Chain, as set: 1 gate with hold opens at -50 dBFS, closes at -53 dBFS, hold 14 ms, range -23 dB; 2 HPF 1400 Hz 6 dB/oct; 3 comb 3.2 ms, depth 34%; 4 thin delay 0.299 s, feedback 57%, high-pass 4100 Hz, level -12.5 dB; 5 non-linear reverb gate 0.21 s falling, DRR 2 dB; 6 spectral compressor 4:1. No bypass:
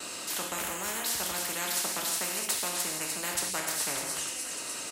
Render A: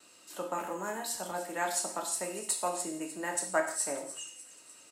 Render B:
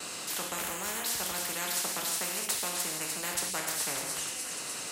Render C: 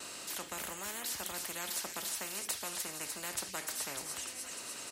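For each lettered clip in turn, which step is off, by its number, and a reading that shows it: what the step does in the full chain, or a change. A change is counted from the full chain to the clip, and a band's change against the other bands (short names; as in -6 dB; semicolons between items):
6, 4 kHz band -10.0 dB; 3, loudness change -1.0 LU; 5, crest factor change +5.5 dB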